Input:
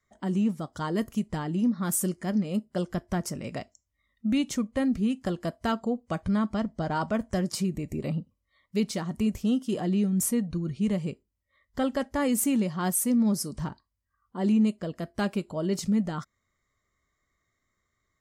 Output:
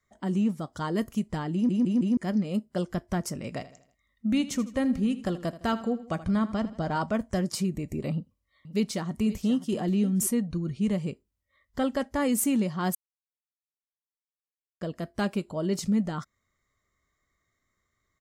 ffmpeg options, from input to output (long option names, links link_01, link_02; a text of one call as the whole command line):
ffmpeg -i in.wav -filter_complex "[0:a]asplit=3[link_01][link_02][link_03];[link_01]afade=type=out:start_time=3.59:duration=0.02[link_04];[link_02]aecho=1:1:80|160|240|320:0.168|0.0755|0.034|0.0153,afade=type=in:start_time=3.59:duration=0.02,afade=type=out:start_time=6.96:duration=0.02[link_05];[link_03]afade=type=in:start_time=6.96:duration=0.02[link_06];[link_04][link_05][link_06]amix=inputs=3:normalize=0,asettb=1/sr,asplit=3[link_07][link_08][link_09];[link_07]atrim=end=8.124[link_10];[link_08]atrim=start=8.12:end=10.27,asetpts=PTS-STARTPTS,afade=type=in:duration=0.004:curve=qsin,afade=type=out:start_time=2.146:duration=0.004:curve=qsin,aecho=1:1:529:0.178,atrim=end_sample=94815[link_11];[link_09]atrim=start=10.266[link_12];[link_10][link_11]acrossfade=duration=0.004:curve1=hsin:curve2=qsin[link_13];[link_13][link_12]acrossfade=duration=0.004:curve1=qsin:curve2=hsin,asplit=7[link_14][link_15][link_16][link_17][link_18][link_19][link_20];[link_14]atrim=end=1.692[link_21];[link_15]atrim=start=1.528:end=1.692[link_22];[link_16]atrim=start=1.528:end=1.692[link_23];[link_17]atrim=start=1.528:end=1.692[link_24];[link_18]atrim=start=2.168:end=12.95,asetpts=PTS-STARTPTS,afade=type=out:start_time=10.778:duration=0.004:curve=hsin[link_25];[link_19]atrim=start=12.95:end=14.81,asetpts=PTS-STARTPTS,volume=0[link_26];[link_20]atrim=start=14.81,asetpts=PTS-STARTPTS,afade=type=in:duration=0.004:curve=hsin[link_27];[link_21][link_22]acrossfade=duration=0.004:curve1=hsin:curve2=hsin[link_28];[link_28][link_23]acrossfade=duration=0.004:curve1=hsin:curve2=hsin[link_29];[link_29][link_24]acrossfade=duration=0.004:curve1=hsin:curve2=hsin[link_30];[link_25][link_26][link_27]concat=n=3:v=0:a=1[link_31];[link_30][link_31]acrossfade=duration=0.004:curve1=hsin:curve2=hsin" out.wav